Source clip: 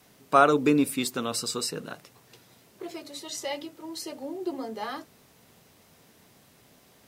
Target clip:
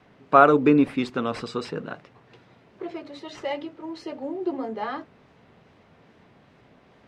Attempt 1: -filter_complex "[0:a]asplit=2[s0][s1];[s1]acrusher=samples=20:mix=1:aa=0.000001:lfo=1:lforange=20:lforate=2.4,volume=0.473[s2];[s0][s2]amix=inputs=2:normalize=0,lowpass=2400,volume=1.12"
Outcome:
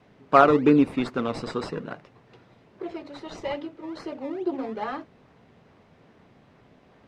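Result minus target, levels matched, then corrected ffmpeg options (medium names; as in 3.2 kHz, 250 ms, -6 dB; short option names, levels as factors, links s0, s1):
decimation with a swept rate: distortion +11 dB
-filter_complex "[0:a]asplit=2[s0][s1];[s1]acrusher=samples=4:mix=1:aa=0.000001:lfo=1:lforange=4:lforate=2.4,volume=0.473[s2];[s0][s2]amix=inputs=2:normalize=0,lowpass=2400,volume=1.12"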